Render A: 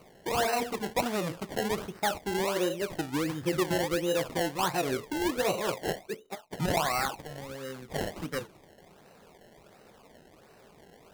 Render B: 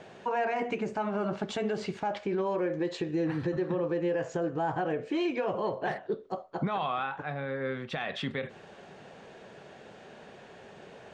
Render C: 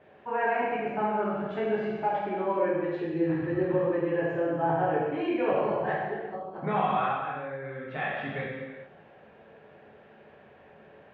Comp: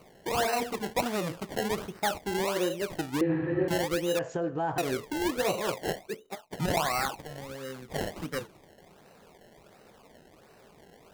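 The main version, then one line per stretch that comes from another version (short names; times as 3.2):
A
3.21–3.68 from C
4.19–4.78 from B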